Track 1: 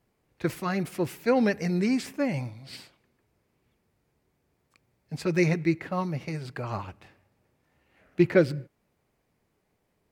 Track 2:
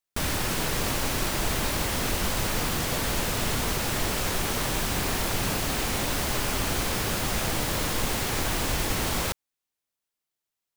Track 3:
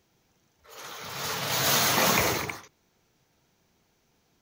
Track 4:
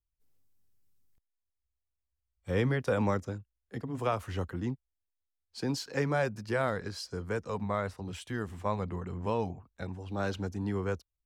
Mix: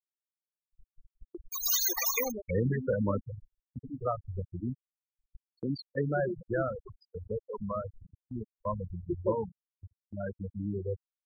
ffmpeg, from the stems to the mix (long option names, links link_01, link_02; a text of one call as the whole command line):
ffmpeg -i stem1.wav -i stem2.wav -i stem3.wav -i stem4.wav -filter_complex "[0:a]lowpass=frequency=1300:width=0.5412,lowpass=frequency=1300:width=1.3066,equalizer=frequency=110:width=0.55:gain=-11,adelay=900,volume=-8.5dB[link_01];[1:a]equalizer=frequency=420:width_type=o:width=2.2:gain=-6.5,volume=-14.5dB,asplit=2[link_02][link_03];[link_03]volume=-8.5dB[link_04];[2:a]highpass=frequency=720:poles=1,volume=-4.5dB,asplit=2[link_05][link_06];[link_06]volume=-13.5dB[link_07];[3:a]volume=0dB,asplit=2[link_08][link_09];[link_09]volume=-19.5dB[link_10];[link_04][link_07][link_10]amix=inputs=3:normalize=0,aecho=0:1:157|314|471|628|785|942:1|0.44|0.194|0.0852|0.0375|0.0165[link_11];[link_01][link_02][link_05][link_08][link_11]amix=inputs=5:normalize=0,highshelf=frequency=4000:gain=9.5,afftfilt=real='re*gte(hypot(re,im),0.126)':imag='im*gte(hypot(re,im),0.126)':win_size=1024:overlap=0.75,agate=range=-20dB:threshold=-48dB:ratio=16:detection=peak" out.wav